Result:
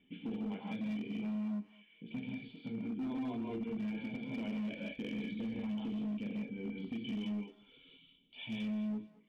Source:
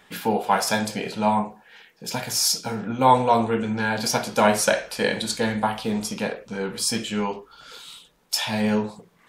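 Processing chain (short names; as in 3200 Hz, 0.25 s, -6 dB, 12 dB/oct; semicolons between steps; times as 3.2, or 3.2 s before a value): reverb removal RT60 0.83 s; vocal tract filter i; in parallel at -3 dB: compressor, threshold -44 dBFS, peak gain reduction 17.5 dB; on the sum: non-linear reverb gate 0.21 s rising, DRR -1.5 dB; limiter -25.5 dBFS, peak gain reduction 10.5 dB; 2.82–3.61 comb 2.9 ms, depth 49%; hard clip -28.5 dBFS, distortion -19 dB; on a send: thinning echo 0.216 s, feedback 21%, high-pass 650 Hz, level -14 dB; on the sum: gain -5.5 dB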